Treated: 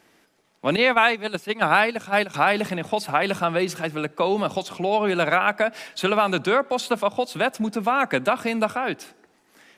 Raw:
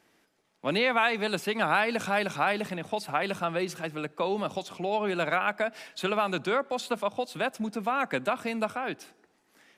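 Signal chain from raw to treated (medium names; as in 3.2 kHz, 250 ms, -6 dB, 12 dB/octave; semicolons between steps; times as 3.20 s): 0.76–2.34 s: gate -26 dBFS, range -12 dB; trim +7 dB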